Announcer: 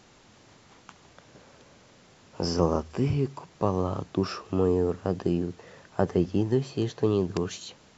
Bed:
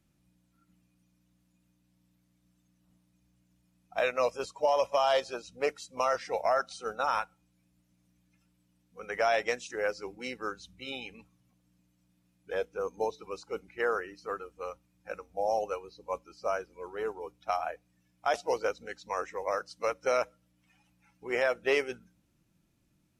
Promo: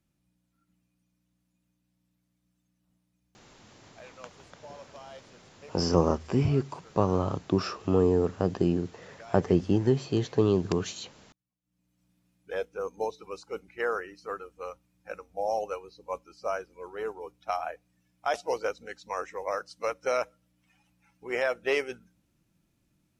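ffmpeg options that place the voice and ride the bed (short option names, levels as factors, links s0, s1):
-filter_complex "[0:a]adelay=3350,volume=1.12[s0];[1:a]volume=6.31,afade=t=out:st=3.36:d=0.44:silence=0.158489,afade=t=in:st=11.61:d=0.46:silence=0.0891251[s1];[s0][s1]amix=inputs=2:normalize=0"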